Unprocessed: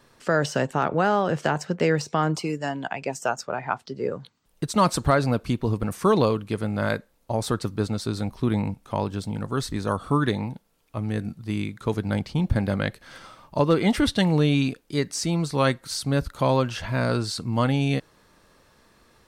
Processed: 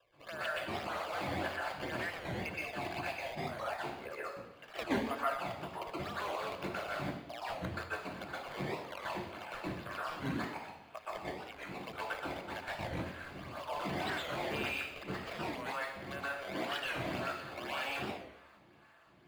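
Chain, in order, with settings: Chebyshev band-pass 650–3100 Hz, order 3; level quantiser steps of 20 dB; transient shaper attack -2 dB, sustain +4 dB; compressor 2.5:1, threshold -57 dBFS, peak gain reduction 23.5 dB; decimation with a swept rate 19×, swing 160% 1.9 Hz; reverb RT60 0.85 s, pre-delay 0.118 s, DRR -6.5 dB; record warp 45 rpm, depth 160 cents; gain +1 dB

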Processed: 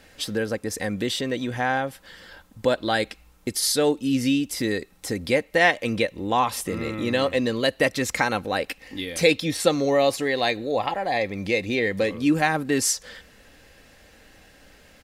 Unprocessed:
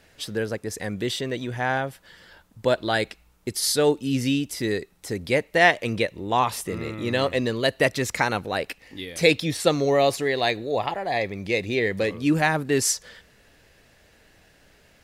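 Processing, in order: comb 3.8 ms, depth 35%; in parallel at +2 dB: compressor, threshold -30 dBFS, peak gain reduction 17.5 dB; on the sum: gain -3 dB

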